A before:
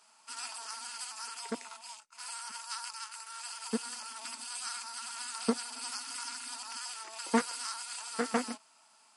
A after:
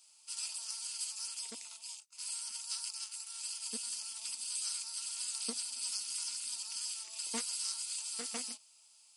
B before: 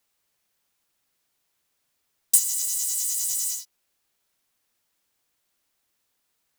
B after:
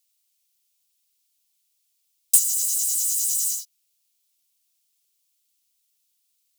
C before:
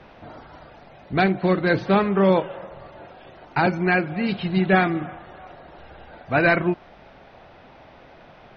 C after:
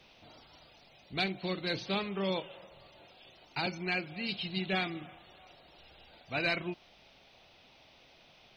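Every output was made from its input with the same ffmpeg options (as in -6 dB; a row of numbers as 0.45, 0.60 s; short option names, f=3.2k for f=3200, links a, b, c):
-af "aexciter=amount=5.8:drive=6.1:freq=2.4k,volume=-16dB"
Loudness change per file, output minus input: -0.5, +2.5, -13.5 LU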